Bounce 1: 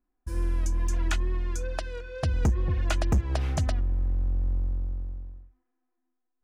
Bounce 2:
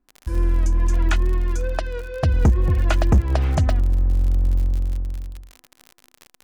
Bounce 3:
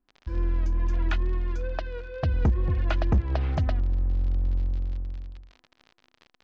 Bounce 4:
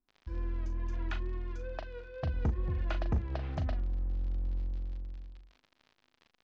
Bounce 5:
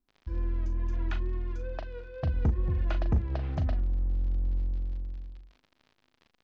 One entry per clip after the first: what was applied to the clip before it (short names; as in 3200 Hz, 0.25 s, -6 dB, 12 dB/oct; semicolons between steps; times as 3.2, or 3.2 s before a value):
high shelf 3300 Hz -8.5 dB; crackle 50/s -36 dBFS; gain +8 dB
LPF 4700 Hz 24 dB/oct; gain -6.5 dB
doubler 39 ms -9 dB; gain -8.5 dB
low shelf 460 Hz +5 dB